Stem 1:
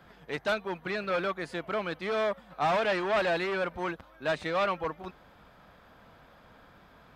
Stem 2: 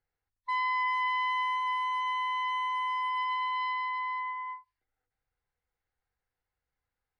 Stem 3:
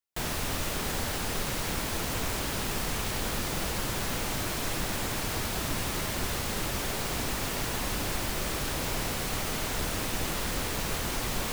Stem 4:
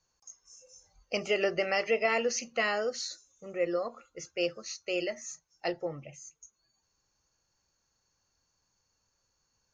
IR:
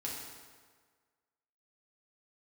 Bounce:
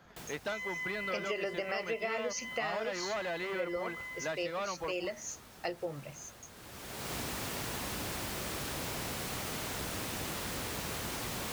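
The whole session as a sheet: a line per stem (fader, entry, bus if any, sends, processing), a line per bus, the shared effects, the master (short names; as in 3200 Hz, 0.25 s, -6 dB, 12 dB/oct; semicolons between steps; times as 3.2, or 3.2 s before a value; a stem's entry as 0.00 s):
-3.5 dB, 0.00 s, no send, dry
+2.0 dB, 0.00 s, no send, ladder band-pass 2500 Hz, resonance 70%
-5.0 dB, 0.00 s, no send, HPF 70 Hz; auto duck -18 dB, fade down 0.40 s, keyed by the fourth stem
+0.5 dB, 0.00 s, no send, dry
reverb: off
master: compressor 4:1, threshold -33 dBFS, peak gain reduction 9.5 dB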